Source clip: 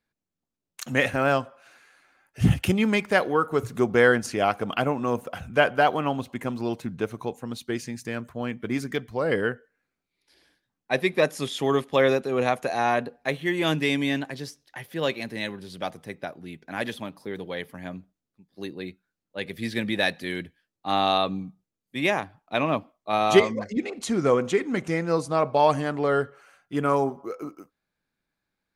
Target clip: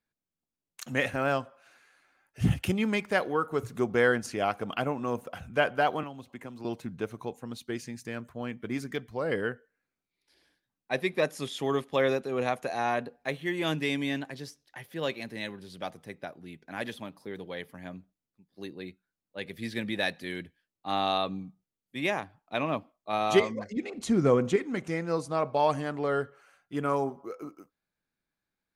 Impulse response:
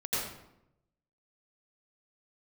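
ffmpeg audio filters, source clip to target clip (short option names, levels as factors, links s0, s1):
-filter_complex "[0:a]asettb=1/sr,asplit=3[s0][s1][s2];[s0]atrim=end=6.034[s3];[s1]atrim=start=6.03:end=6.65,asetpts=PTS-STARTPTS,afade=t=in:d=0.004:c=qsin,afade=t=out:st=0.616:d=0.004:c=qsin,acrossover=split=270|3000[s4][s5][s6];[s4]acompressor=threshold=0.00891:ratio=4[s7];[s5]acompressor=threshold=0.0141:ratio=4[s8];[s6]acompressor=threshold=0.00178:ratio=4[s9];[s7][s8][s9]amix=inputs=3:normalize=0[s10];[s2]atrim=start=6.646[s11];[s3][s10]acrossfade=d=0.004:c1=hsin:c2=qsin[s12];[s12][s11]acrossfade=d=0.004:c1=qsin:c2=hsin,asettb=1/sr,asplit=3[s13][s14][s15];[s13]atrim=end=23.944[s16];[s14]atrim=start=23.94:end=24.56,asetpts=PTS-STARTPTS,afade=t=in:d=0.004:c=qsin,afade=t=out:st=0.616:d=0.004:c=qsin,lowshelf=f=340:g=9.5[s17];[s15]atrim=start=24.556[s18];[s16][s17]acrossfade=d=0.004:c1=hsin:c2=qsin[s19];[s19][s18]acrossfade=d=0.004:c1=qsin:c2=hsin,volume=0.531"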